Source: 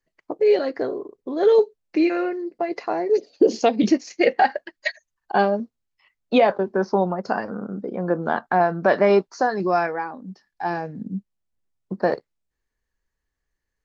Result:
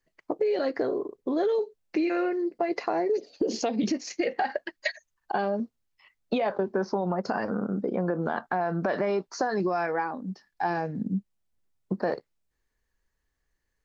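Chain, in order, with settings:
brickwall limiter −15.5 dBFS, peak gain reduction 9.5 dB
downward compressor, threshold −25 dBFS, peak gain reduction 7 dB
level +2 dB

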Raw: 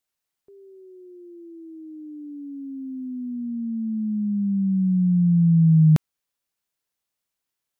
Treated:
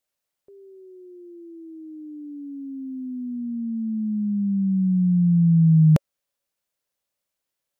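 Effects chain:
parametric band 560 Hz +9.5 dB 0.3 octaves

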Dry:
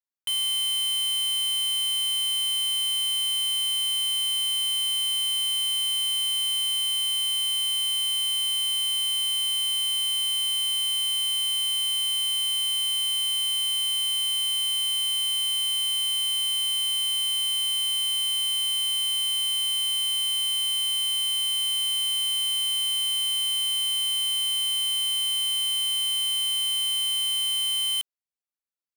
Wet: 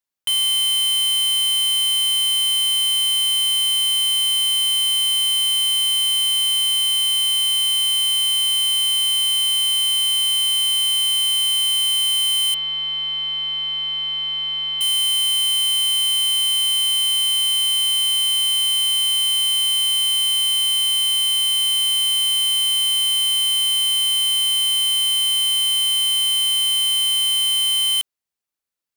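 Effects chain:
0:12.54–0:14.81: Bessel low-pass filter 2,500 Hz, order 6
level +7 dB

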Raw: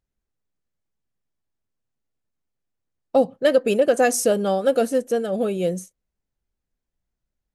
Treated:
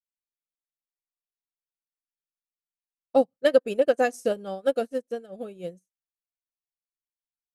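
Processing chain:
high-shelf EQ 8,500 Hz −2 dB
expander for the loud parts 2.5 to 1, over −36 dBFS

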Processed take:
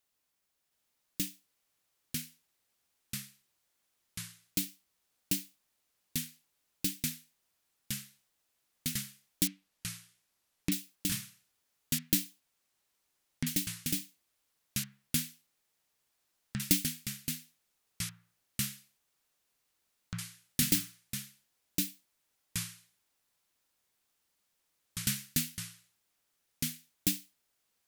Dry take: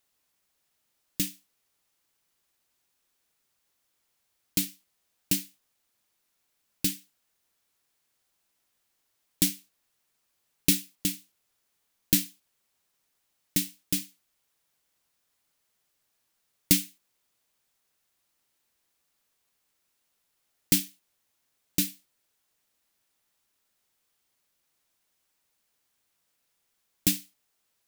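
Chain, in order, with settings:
0:09.47–0:10.72: treble cut that deepens with the level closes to 2,000 Hz, closed at −36.5 dBFS
delay with pitch and tempo change per echo 720 ms, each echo −3 semitones, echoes 3
level −5.5 dB

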